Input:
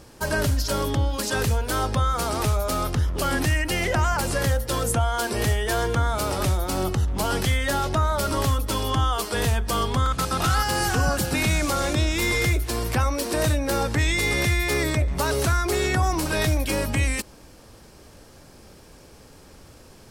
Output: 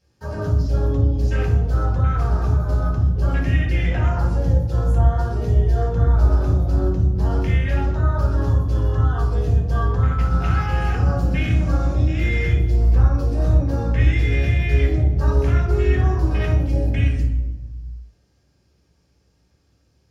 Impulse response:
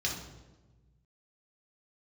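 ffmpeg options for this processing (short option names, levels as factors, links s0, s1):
-filter_complex "[0:a]afwtdn=0.0562[s0];[1:a]atrim=start_sample=2205[s1];[s0][s1]afir=irnorm=-1:irlink=0,volume=0.422"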